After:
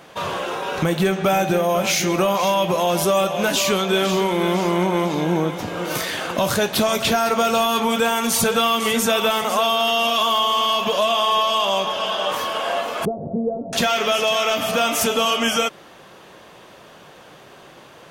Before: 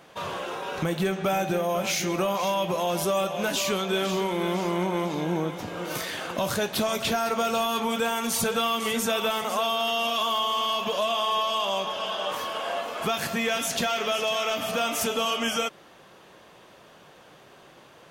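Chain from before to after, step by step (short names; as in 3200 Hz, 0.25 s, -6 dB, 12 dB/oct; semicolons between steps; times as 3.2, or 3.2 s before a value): 13.05–13.73 steep low-pass 640 Hz 36 dB/oct; gain +7 dB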